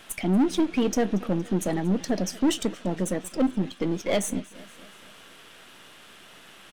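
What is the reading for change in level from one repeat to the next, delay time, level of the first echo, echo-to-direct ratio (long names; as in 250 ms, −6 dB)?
−5.0 dB, 233 ms, −21.0 dB, −19.5 dB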